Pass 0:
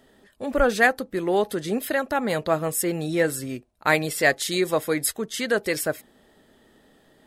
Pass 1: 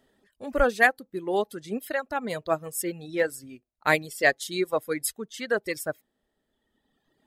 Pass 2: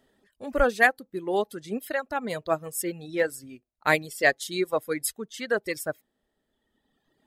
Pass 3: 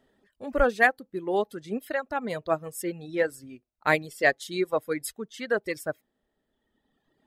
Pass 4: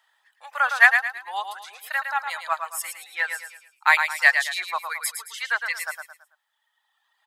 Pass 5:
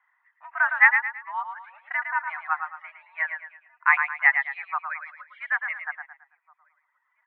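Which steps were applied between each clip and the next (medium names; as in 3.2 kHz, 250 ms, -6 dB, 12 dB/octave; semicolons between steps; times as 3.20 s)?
reverb removal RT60 1.9 s; upward expansion 1.5:1, over -32 dBFS
no audible change
treble shelf 4.2 kHz -7.5 dB
elliptic high-pass 890 Hz, stop band 80 dB; on a send: feedback delay 110 ms, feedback 37%, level -7 dB; on the sum: trim +8 dB
echo from a far wall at 300 m, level -26 dB; mistuned SSB +120 Hz 530–2000 Hz; MP3 48 kbps 16 kHz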